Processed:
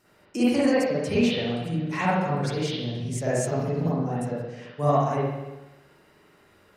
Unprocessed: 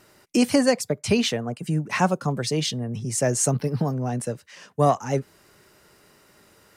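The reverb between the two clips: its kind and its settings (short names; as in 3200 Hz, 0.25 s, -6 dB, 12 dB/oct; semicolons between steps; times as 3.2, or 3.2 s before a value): spring tank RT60 1.1 s, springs 42/54 ms, chirp 25 ms, DRR -9.5 dB; gain -11 dB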